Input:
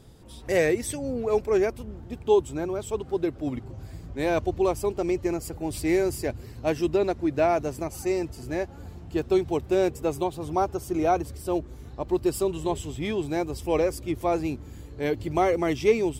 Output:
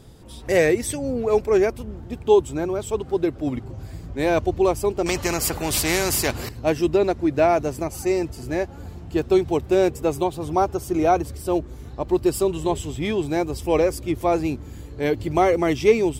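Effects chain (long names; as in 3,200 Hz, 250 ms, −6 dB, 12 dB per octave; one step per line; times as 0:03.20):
0:05.06–0:06.49: every bin compressed towards the loudest bin 2 to 1
level +4.5 dB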